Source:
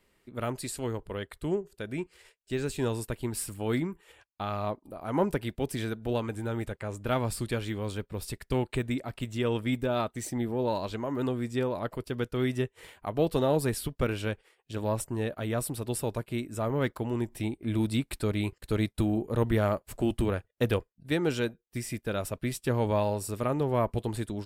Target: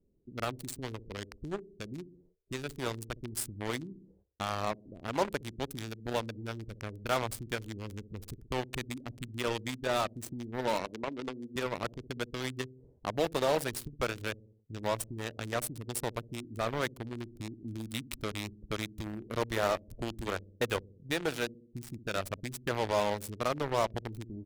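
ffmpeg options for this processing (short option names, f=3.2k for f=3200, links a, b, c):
-filter_complex "[0:a]asettb=1/sr,asplit=3[a][b][c];[a]atrim=end=10.794[d];[b]atrim=start=10.79:end=11.56,asetpts=PTS-STARTPTS,afade=t=in:d=0.004:c=qsin,afade=t=out:st=0.766:d=0.004:c=qsin,highpass=240,lowpass=3k[e];[c]atrim=start=11.556[f];[d][e]acrossfade=d=0.004:c1=hsin:c2=qsin[g];[g][f]acrossfade=d=0.004:c1=qsin:c2=hsin,asplit=2[h][i];[i]adelay=62,lowpass=f=960:p=1,volume=-13dB,asplit=2[j][k];[k]adelay=62,lowpass=f=960:p=1,volume=0.48,asplit=2[l][m];[m]adelay=62,lowpass=f=960:p=1,volume=0.48,asplit=2[n][o];[o]adelay=62,lowpass=f=960:p=1,volume=0.48,asplit=2[p][q];[q]adelay=62,lowpass=f=960:p=1,volume=0.48[r];[h][j][l][n][p][r]amix=inputs=6:normalize=0,acrossover=split=440[s][t];[s]acompressor=threshold=-40dB:ratio=4[u];[t]acrusher=bits=4:mix=0:aa=0.5[v];[u][v]amix=inputs=2:normalize=0"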